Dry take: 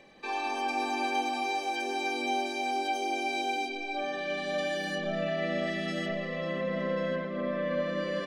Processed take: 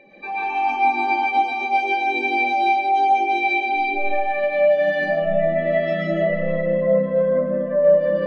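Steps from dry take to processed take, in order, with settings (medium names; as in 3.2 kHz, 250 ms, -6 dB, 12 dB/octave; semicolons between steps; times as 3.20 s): spectral contrast enhancement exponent 2.1; algorithmic reverb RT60 1 s, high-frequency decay 0.6×, pre-delay 90 ms, DRR -6 dB; trim +5.5 dB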